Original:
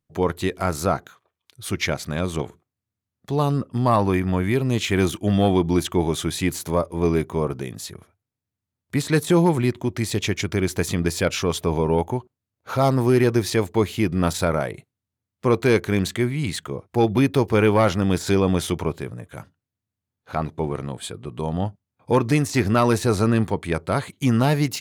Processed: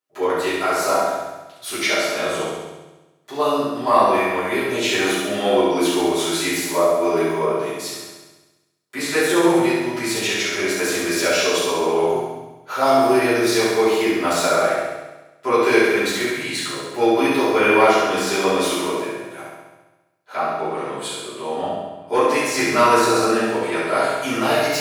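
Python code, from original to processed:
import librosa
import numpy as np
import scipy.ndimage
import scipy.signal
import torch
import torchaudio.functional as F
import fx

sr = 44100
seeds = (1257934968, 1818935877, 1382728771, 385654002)

p1 = scipy.signal.sosfilt(scipy.signal.butter(2, 520.0, 'highpass', fs=sr, output='sos'), x)
p2 = p1 + fx.room_flutter(p1, sr, wall_m=11.6, rt60_s=1.1, dry=0)
p3 = fx.room_shoebox(p2, sr, seeds[0], volume_m3=110.0, walls='mixed', distance_m=3.0)
y = F.gain(torch.from_numpy(p3), -6.0).numpy()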